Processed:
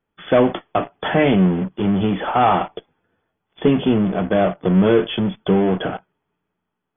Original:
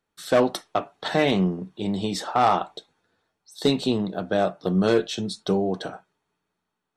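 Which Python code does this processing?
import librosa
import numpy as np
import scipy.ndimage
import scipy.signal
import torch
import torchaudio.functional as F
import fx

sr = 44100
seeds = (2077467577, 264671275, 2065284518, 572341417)

p1 = fx.low_shelf(x, sr, hz=500.0, db=5.5)
p2 = fx.fuzz(p1, sr, gain_db=35.0, gate_db=-42.0)
p3 = p1 + (p2 * librosa.db_to_amplitude(-11.0))
y = fx.brickwall_lowpass(p3, sr, high_hz=3500.0)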